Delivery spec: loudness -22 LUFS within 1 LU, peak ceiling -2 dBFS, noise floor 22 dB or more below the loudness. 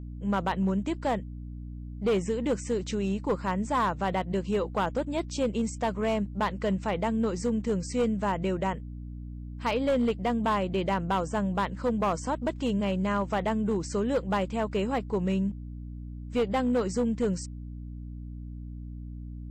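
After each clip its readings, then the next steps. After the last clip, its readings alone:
clipped samples 1.3%; clipping level -20.5 dBFS; hum 60 Hz; highest harmonic 300 Hz; hum level -37 dBFS; loudness -29.0 LUFS; peak level -20.5 dBFS; loudness target -22.0 LUFS
-> clip repair -20.5 dBFS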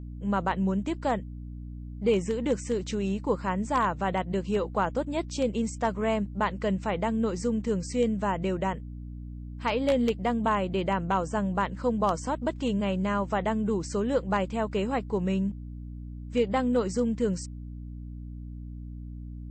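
clipped samples 0.0%; hum 60 Hz; highest harmonic 300 Hz; hum level -36 dBFS
-> de-hum 60 Hz, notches 5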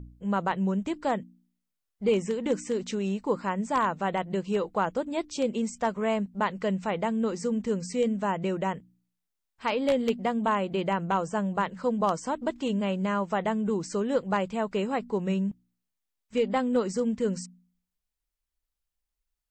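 hum not found; loudness -29.0 LUFS; peak level -11.0 dBFS; loudness target -22.0 LUFS
-> trim +7 dB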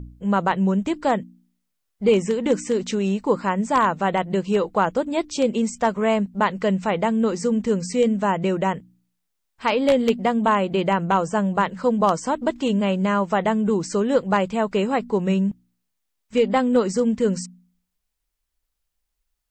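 loudness -22.0 LUFS; peak level -4.0 dBFS; noise floor -77 dBFS

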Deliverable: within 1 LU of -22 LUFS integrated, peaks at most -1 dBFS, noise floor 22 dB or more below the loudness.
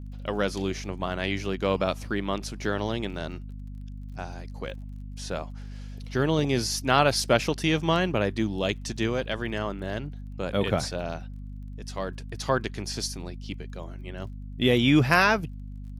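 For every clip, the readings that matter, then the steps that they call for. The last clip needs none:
tick rate 29 per s; hum 50 Hz; highest harmonic 250 Hz; hum level -36 dBFS; loudness -27.0 LUFS; peak level -7.0 dBFS; loudness target -22.0 LUFS
-> de-click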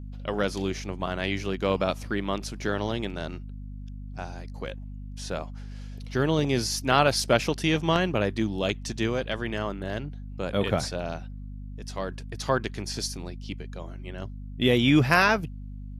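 tick rate 0 per s; hum 50 Hz; highest harmonic 250 Hz; hum level -36 dBFS
-> hum notches 50/100/150/200/250 Hz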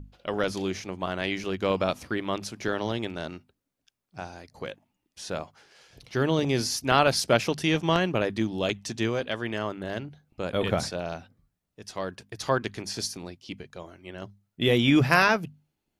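hum not found; loudness -27.0 LUFS; peak level -6.5 dBFS; loudness target -22.0 LUFS
-> trim +5 dB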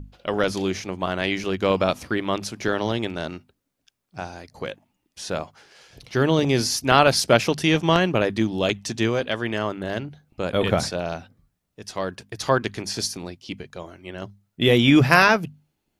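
loudness -22.0 LUFS; peak level -1.5 dBFS; noise floor -77 dBFS

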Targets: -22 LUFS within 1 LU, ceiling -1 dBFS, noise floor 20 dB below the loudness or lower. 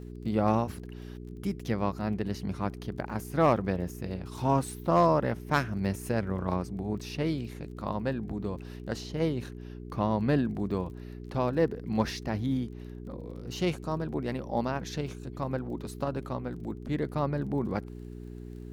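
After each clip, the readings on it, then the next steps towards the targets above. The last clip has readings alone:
tick rate 27 per s; hum 60 Hz; highest harmonic 420 Hz; hum level -39 dBFS; loudness -31.0 LUFS; peak level -13.0 dBFS; loudness target -22.0 LUFS
-> de-click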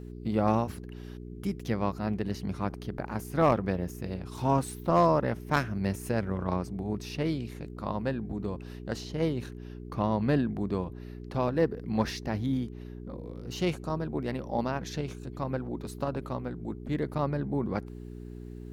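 tick rate 0.27 per s; hum 60 Hz; highest harmonic 420 Hz; hum level -39 dBFS
-> de-hum 60 Hz, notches 7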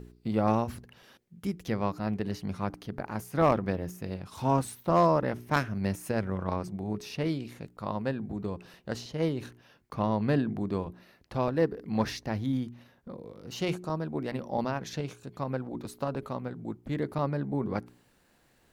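hum not found; loudness -31.5 LUFS; peak level -13.0 dBFS; loudness target -22.0 LUFS
-> trim +9.5 dB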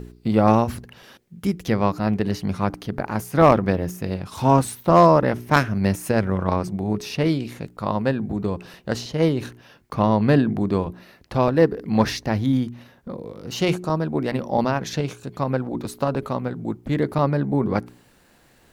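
loudness -22.0 LUFS; peak level -3.5 dBFS; noise floor -56 dBFS

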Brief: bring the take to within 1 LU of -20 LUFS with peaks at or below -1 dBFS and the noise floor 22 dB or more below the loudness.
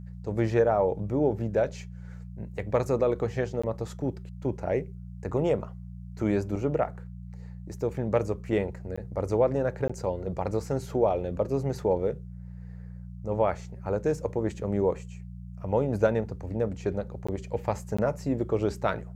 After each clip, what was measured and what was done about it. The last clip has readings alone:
dropouts 5; longest dropout 15 ms; hum 60 Hz; highest harmonic 180 Hz; hum level -39 dBFS; loudness -29.0 LUFS; peak level -10.5 dBFS; loudness target -20.0 LUFS
-> interpolate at 3.62/8.96/9.88/17.27/17.97 s, 15 ms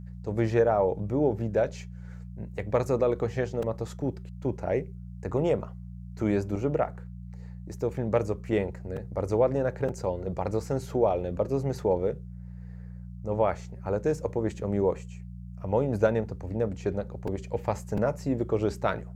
dropouts 0; hum 60 Hz; highest harmonic 180 Hz; hum level -39 dBFS
-> de-hum 60 Hz, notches 3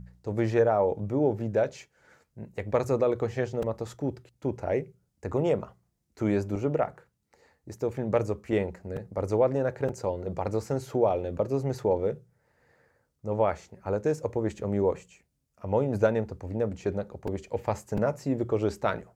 hum not found; loudness -29.0 LUFS; peak level -10.5 dBFS; loudness target -20.0 LUFS
-> trim +9 dB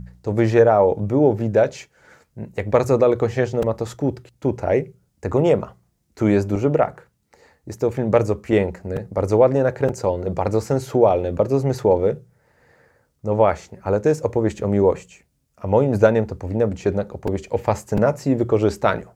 loudness -20.0 LUFS; peak level -1.5 dBFS; noise floor -67 dBFS

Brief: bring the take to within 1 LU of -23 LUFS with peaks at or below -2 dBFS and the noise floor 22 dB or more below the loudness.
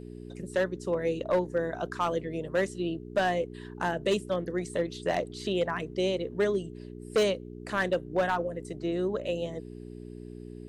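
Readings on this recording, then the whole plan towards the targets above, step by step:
clipped samples 0.8%; clipping level -19.5 dBFS; hum 60 Hz; highest harmonic 420 Hz; hum level -40 dBFS; loudness -30.5 LUFS; peak level -19.5 dBFS; loudness target -23.0 LUFS
-> clip repair -19.5 dBFS; de-hum 60 Hz, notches 7; trim +7.5 dB

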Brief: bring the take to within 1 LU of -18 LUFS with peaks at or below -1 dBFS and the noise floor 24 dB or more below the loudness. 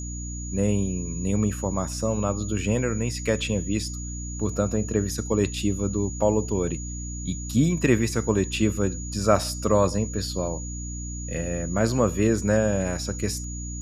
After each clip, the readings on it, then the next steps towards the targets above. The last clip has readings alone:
hum 60 Hz; highest harmonic 300 Hz; hum level -31 dBFS; steady tone 6.8 kHz; tone level -37 dBFS; loudness -25.5 LUFS; peak level -4.5 dBFS; loudness target -18.0 LUFS
-> hum notches 60/120/180/240/300 Hz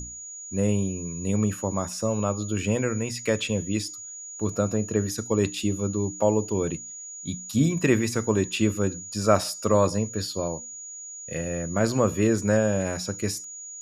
hum not found; steady tone 6.8 kHz; tone level -37 dBFS
-> band-stop 6.8 kHz, Q 30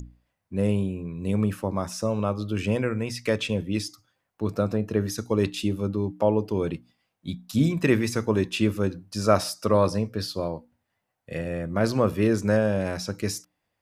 steady tone not found; loudness -26.0 LUFS; peak level -4.5 dBFS; loudness target -18.0 LUFS
-> trim +8 dB; peak limiter -1 dBFS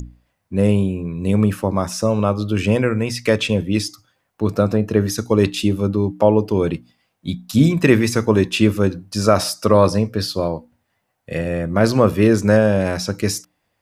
loudness -18.5 LUFS; peak level -1.0 dBFS; noise floor -71 dBFS

